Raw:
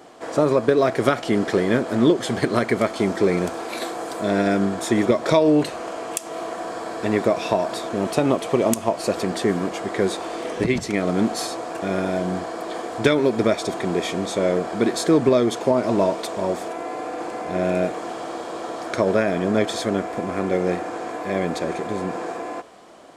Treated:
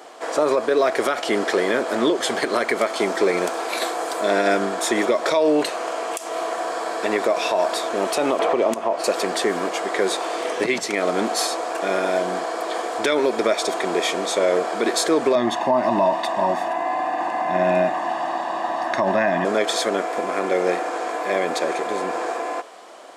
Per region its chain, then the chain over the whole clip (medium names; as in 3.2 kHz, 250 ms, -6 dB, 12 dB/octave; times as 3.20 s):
8.39–9.04 s: low-pass 1.6 kHz 6 dB/octave + three bands compressed up and down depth 70%
15.35–19.45 s: tone controls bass +7 dB, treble -13 dB + comb 1.1 ms, depth 92%
whole clip: high-pass 460 Hz 12 dB/octave; peak limiter -15 dBFS; trim +5.5 dB